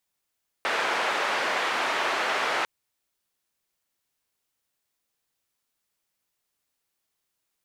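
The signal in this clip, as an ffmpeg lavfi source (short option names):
-f lavfi -i "anoisesrc=c=white:d=2:r=44100:seed=1,highpass=f=510,lowpass=f=1800,volume=-9.8dB"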